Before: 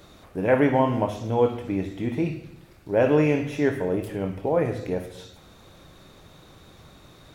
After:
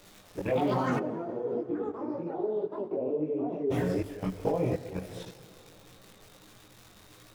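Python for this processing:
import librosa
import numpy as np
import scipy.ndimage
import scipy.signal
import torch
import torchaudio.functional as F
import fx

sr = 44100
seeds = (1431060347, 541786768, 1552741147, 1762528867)

y = fx.env_flanger(x, sr, rest_ms=11.5, full_db=-19.5)
y = fx.echo_pitch(y, sr, ms=234, semitones=6, count=3, db_per_echo=-3.0)
y = fx.echo_feedback(y, sr, ms=155, feedback_pct=51, wet_db=-14.0)
y = fx.level_steps(y, sr, step_db=15)
y = fx.dmg_crackle(y, sr, seeds[0], per_s=210.0, level_db=-42.0)
y = fx.chorus_voices(y, sr, voices=4, hz=1.2, base_ms=20, depth_ms=3.8, mix_pct=50)
y = fx.bandpass_q(y, sr, hz=380.0, q=2.4, at=(0.98, 3.7), fade=0.02)
y = fx.rev_plate(y, sr, seeds[1], rt60_s=4.3, hf_ratio=0.6, predelay_ms=0, drr_db=18.0)
y = y * 10.0 ** (6.0 / 20.0)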